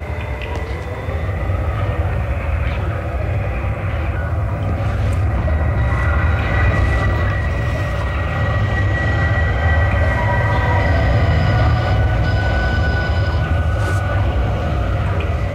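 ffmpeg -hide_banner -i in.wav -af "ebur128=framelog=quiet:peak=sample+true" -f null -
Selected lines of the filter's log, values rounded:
Integrated loudness:
  I:         -18.3 LUFS
  Threshold: -28.3 LUFS
Loudness range:
  LRA:         4.9 LU
  Threshold: -38.0 LUFS
  LRA low:   -21.0 LUFS
  LRA high:  -16.1 LUFS
Sample peak:
  Peak:       -6.8 dBFS
True peak:
  Peak:       -6.8 dBFS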